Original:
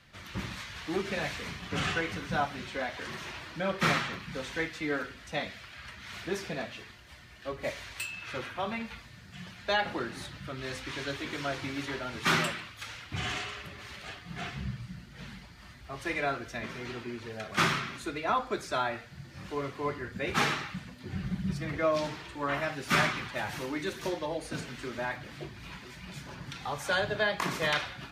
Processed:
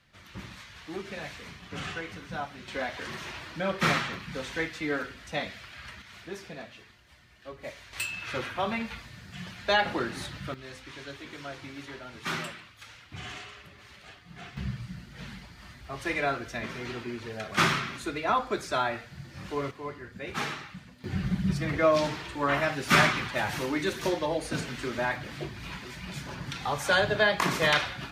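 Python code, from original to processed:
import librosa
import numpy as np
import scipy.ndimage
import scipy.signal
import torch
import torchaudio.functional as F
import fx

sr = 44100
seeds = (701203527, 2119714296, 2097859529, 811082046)

y = fx.gain(x, sr, db=fx.steps((0.0, -5.5), (2.68, 1.5), (6.02, -6.0), (7.93, 4.0), (10.54, -6.5), (14.57, 2.5), (19.71, -5.0), (21.04, 5.0)))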